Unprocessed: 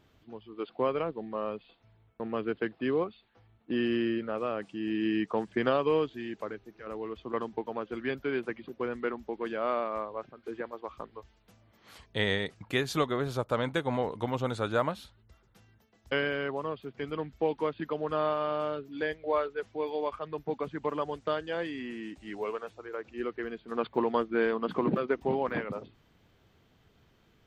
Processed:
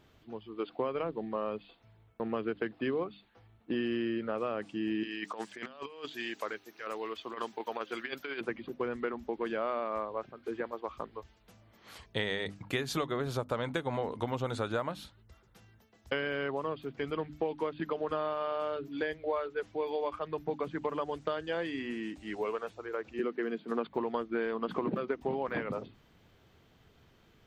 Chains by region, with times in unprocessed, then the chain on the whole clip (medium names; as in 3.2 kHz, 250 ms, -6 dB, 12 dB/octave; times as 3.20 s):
5.03–8.41 s: high-pass 950 Hz 6 dB/octave + treble shelf 3.8 kHz +8.5 dB + compressor with a negative ratio -39 dBFS, ratio -0.5
23.19–23.87 s: steep high-pass 160 Hz + bass shelf 430 Hz +6 dB
whole clip: hum notches 50/100/150/200/250/300 Hz; compression, threshold -31 dBFS; trim +2 dB